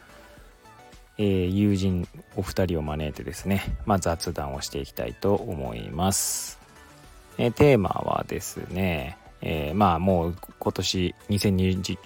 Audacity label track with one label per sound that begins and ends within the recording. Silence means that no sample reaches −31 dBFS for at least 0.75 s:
1.190000	6.520000	sound